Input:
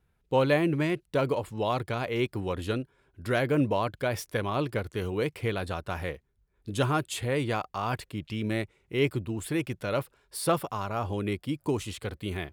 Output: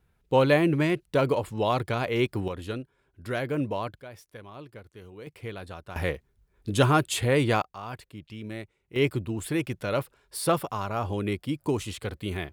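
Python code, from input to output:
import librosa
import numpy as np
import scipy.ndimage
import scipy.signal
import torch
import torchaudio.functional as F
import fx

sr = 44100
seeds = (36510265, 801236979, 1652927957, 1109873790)

y = fx.gain(x, sr, db=fx.steps((0.0, 3.0), (2.48, -3.5), (4.0, -15.0), (5.27, -7.5), (5.96, 5.5), (7.62, -7.5), (8.96, 1.5)))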